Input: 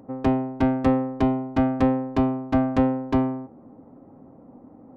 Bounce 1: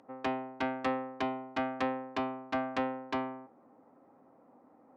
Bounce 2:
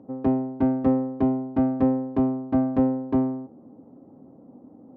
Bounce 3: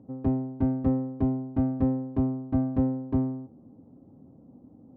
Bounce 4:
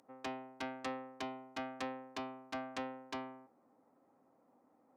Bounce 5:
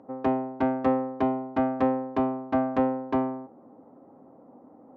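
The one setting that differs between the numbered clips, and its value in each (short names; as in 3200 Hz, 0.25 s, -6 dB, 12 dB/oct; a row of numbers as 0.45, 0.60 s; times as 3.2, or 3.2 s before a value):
band-pass, frequency: 2800, 280, 100, 7700, 790 Hz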